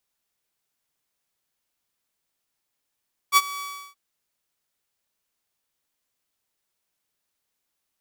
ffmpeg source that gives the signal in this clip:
-f lavfi -i "aevalsrc='0.355*(2*mod(1140*t,1)-1)':d=0.625:s=44100,afade=t=in:d=0.048,afade=t=out:st=0.048:d=0.039:silence=0.112,afade=t=out:st=0.28:d=0.345"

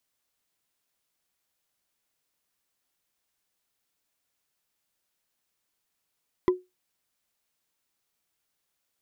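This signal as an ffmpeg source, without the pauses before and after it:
-f lavfi -i "aevalsrc='0.2*pow(10,-3*t/0.21)*sin(2*PI*365*t)+0.0794*pow(10,-3*t/0.062)*sin(2*PI*1006.3*t)+0.0316*pow(10,-3*t/0.028)*sin(2*PI*1972.5*t)+0.0126*pow(10,-3*t/0.015)*sin(2*PI*3260.5*t)+0.00501*pow(10,-3*t/0.009)*sin(2*PI*4869.1*t)':d=0.45:s=44100"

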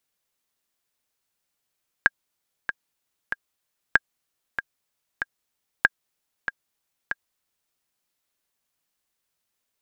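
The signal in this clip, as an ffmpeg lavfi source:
-f lavfi -i "aevalsrc='pow(10,(-2-10.5*gte(mod(t,3*60/95),60/95))/20)*sin(2*PI*1620*mod(t,60/95))*exp(-6.91*mod(t,60/95)/0.03)':d=5.68:s=44100"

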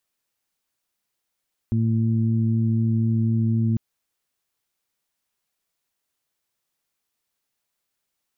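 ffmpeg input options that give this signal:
-f lavfi -i "aevalsrc='0.106*sin(2*PI*113*t)+0.075*sin(2*PI*226*t)+0.015*sin(2*PI*339*t)':d=2.05:s=44100"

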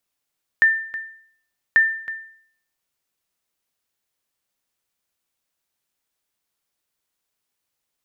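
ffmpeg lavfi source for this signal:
-f lavfi -i "aevalsrc='0.398*(sin(2*PI*1790*mod(t,1.14))*exp(-6.91*mod(t,1.14)/0.6)+0.168*sin(2*PI*1790*max(mod(t,1.14)-0.32,0))*exp(-6.91*max(mod(t,1.14)-0.32,0)/0.6))':d=2.28:s=44100"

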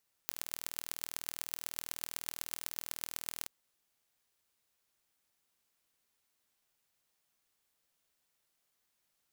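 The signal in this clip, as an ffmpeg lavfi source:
-f lavfi -i "aevalsrc='0.398*eq(mod(n,1102),0)*(0.5+0.5*eq(mod(n,5510),0))':d=3.18:s=44100"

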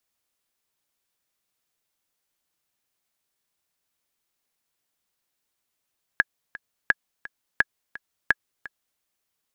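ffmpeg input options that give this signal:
-f lavfi -i "aevalsrc='pow(10,(-4-19*gte(mod(t,2*60/171),60/171))/20)*sin(2*PI*1670*mod(t,60/171))*exp(-6.91*mod(t,60/171)/0.03)':d=2.8:s=44100"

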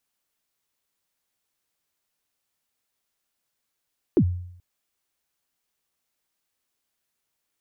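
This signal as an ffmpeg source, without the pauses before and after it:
-f lavfi -i "aevalsrc='0.251*pow(10,-3*t/0.7)*sin(2*PI*(420*0.07/log(89/420)*(exp(log(89/420)*min(t,0.07)/0.07)-1)+89*max(t-0.07,0)))':d=0.43:s=44100"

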